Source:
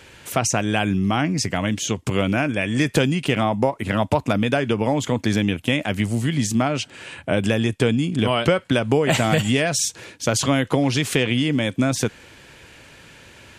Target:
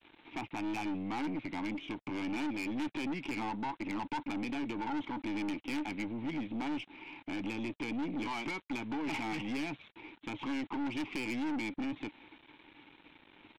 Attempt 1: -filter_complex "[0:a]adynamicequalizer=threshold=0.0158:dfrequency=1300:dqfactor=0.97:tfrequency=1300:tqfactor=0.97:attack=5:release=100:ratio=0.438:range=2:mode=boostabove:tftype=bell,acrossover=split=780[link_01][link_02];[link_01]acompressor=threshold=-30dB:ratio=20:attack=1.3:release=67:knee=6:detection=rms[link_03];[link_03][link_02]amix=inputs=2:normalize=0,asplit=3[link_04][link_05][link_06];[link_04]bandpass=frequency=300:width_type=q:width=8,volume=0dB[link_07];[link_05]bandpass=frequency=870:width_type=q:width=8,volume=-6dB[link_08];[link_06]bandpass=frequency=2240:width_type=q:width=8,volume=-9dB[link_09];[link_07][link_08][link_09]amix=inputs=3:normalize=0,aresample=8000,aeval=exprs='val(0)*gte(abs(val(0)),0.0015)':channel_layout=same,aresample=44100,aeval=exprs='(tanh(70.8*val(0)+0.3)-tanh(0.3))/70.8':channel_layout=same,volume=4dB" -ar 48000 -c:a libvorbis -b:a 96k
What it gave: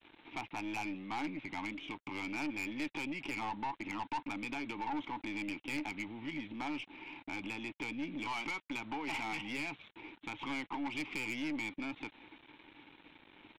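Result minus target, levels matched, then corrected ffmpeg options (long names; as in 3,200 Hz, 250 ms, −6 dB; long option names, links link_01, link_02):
downward compressor: peak gain reduction +10.5 dB
-filter_complex "[0:a]adynamicequalizer=threshold=0.0158:dfrequency=1300:dqfactor=0.97:tfrequency=1300:tqfactor=0.97:attack=5:release=100:ratio=0.438:range=2:mode=boostabove:tftype=bell,acrossover=split=780[link_01][link_02];[link_01]acompressor=threshold=-19dB:ratio=20:attack=1.3:release=67:knee=6:detection=rms[link_03];[link_03][link_02]amix=inputs=2:normalize=0,asplit=3[link_04][link_05][link_06];[link_04]bandpass=frequency=300:width_type=q:width=8,volume=0dB[link_07];[link_05]bandpass=frequency=870:width_type=q:width=8,volume=-6dB[link_08];[link_06]bandpass=frequency=2240:width_type=q:width=8,volume=-9dB[link_09];[link_07][link_08][link_09]amix=inputs=3:normalize=0,aresample=8000,aeval=exprs='val(0)*gte(abs(val(0)),0.0015)':channel_layout=same,aresample=44100,aeval=exprs='(tanh(70.8*val(0)+0.3)-tanh(0.3))/70.8':channel_layout=same,volume=4dB" -ar 48000 -c:a libvorbis -b:a 96k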